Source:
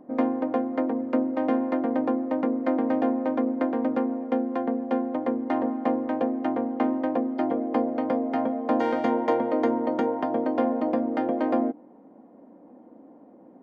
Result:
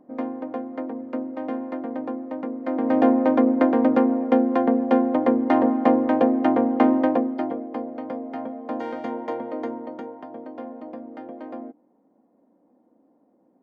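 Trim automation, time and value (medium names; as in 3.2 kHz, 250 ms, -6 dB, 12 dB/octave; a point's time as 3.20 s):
2.60 s -5 dB
3.03 s +7 dB
7.03 s +7 dB
7.70 s -6 dB
9.62 s -6 dB
10.17 s -12 dB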